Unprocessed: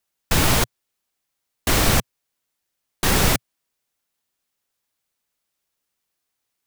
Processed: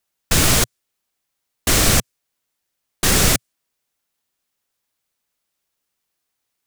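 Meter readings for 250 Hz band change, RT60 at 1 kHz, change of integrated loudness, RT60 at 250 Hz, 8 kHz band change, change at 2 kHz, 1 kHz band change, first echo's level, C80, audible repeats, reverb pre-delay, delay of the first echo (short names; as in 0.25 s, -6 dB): +1.5 dB, none, +3.5 dB, none, +6.5 dB, +2.0 dB, -1.0 dB, none, none, none, none, none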